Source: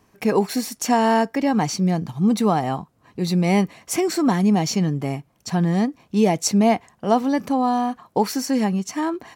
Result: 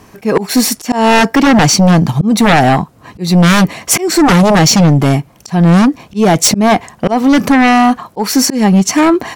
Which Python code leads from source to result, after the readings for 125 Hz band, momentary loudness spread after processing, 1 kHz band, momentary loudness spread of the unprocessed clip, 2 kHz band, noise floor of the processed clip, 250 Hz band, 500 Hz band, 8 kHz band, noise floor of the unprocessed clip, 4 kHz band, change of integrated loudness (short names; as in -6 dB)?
+12.5 dB, 7 LU, +10.0 dB, 7 LU, +16.0 dB, -43 dBFS, +10.5 dB, +8.5 dB, +14.5 dB, -61 dBFS, +15.0 dB, +11.0 dB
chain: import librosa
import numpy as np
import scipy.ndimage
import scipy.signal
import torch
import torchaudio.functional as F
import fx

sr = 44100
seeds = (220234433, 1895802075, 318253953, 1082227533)

y = fx.auto_swell(x, sr, attack_ms=280.0)
y = fx.fold_sine(y, sr, drive_db=11, ceiling_db=-7.5)
y = y * 10.0 ** (3.5 / 20.0)